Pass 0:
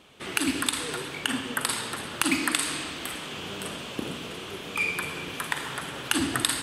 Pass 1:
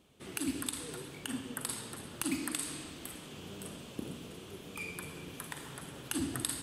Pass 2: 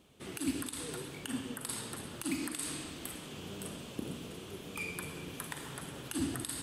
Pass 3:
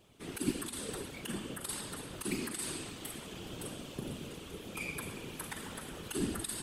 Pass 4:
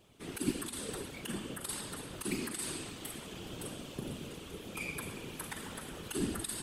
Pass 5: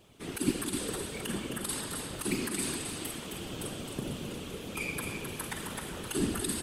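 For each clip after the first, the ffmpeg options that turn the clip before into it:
-af "equalizer=f=1.8k:w=0.3:g=-11.5,volume=-4.5dB"
-af "alimiter=level_in=0.5dB:limit=-24dB:level=0:latency=1:release=113,volume=-0.5dB,volume=2dB"
-af "afftfilt=real='hypot(re,im)*cos(2*PI*random(0))':imag='hypot(re,im)*sin(2*PI*random(1))':win_size=512:overlap=0.75,volume=6dB"
-af anull
-af "aecho=1:1:263:0.473,volume=4dB"

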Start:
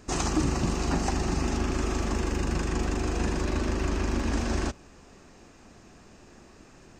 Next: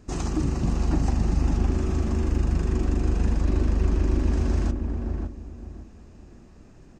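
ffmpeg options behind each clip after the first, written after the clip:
-filter_complex "[0:a]lowshelf=f=380:g=11,asplit=2[a][b];[b]adelay=562,lowpass=f=970:p=1,volume=-3dB,asplit=2[c][d];[d]adelay=562,lowpass=f=970:p=1,volume=0.29,asplit=2[e][f];[f]adelay=562,lowpass=f=970:p=1,volume=0.29,asplit=2[g][h];[h]adelay=562,lowpass=f=970:p=1,volume=0.29[i];[a][c][e][g][i]amix=inputs=5:normalize=0,volume=-7.5dB"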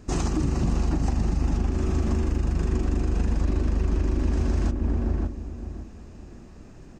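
-af "alimiter=limit=-19dB:level=0:latency=1:release=179,volume=4dB"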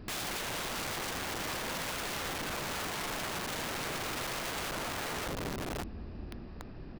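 -af "aresample=11025,aresample=44100,aeval=exprs='(mod(39.8*val(0)+1,2)-1)/39.8':c=same"

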